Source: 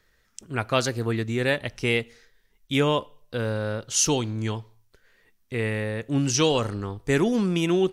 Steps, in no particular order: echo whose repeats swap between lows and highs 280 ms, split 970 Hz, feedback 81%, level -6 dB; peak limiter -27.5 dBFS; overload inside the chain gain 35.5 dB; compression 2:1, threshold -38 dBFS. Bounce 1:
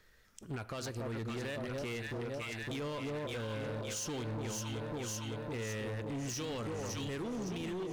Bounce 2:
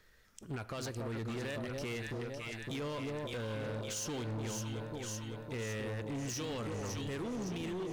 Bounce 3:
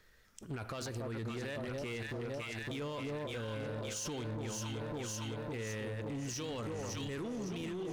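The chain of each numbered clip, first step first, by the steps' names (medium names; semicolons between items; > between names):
echo whose repeats swap between lows and highs > compression > peak limiter > overload inside the chain; compression > echo whose repeats swap between lows and highs > peak limiter > overload inside the chain; echo whose repeats swap between lows and highs > peak limiter > compression > overload inside the chain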